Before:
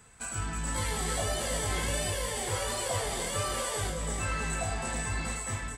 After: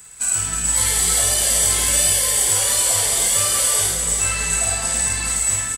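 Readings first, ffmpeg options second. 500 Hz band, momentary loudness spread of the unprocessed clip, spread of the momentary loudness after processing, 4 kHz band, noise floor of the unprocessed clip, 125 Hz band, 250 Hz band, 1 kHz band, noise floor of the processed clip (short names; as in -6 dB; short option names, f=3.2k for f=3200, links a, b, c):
+3.5 dB, 3 LU, 4 LU, +14.0 dB, -39 dBFS, +3.5 dB, +2.0 dB, +5.0 dB, -25 dBFS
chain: -af "crystalizer=i=6.5:c=0,aecho=1:1:50|107.5|173.6|249.7|337.1:0.631|0.398|0.251|0.158|0.1"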